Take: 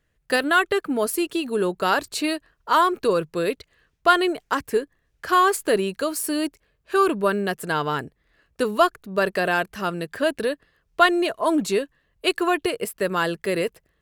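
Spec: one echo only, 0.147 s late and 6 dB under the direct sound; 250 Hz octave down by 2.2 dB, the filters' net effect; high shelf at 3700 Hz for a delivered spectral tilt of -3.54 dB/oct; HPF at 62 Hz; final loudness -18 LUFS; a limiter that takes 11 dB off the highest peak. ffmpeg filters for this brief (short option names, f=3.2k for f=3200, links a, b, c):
-af "highpass=62,equalizer=f=250:t=o:g=-3.5,highshelf=f=3.7k:g=7,alimiter=limit=-13.5dB:level=0:latency=1,aecho=1:1:147:0.501,volume=7dB"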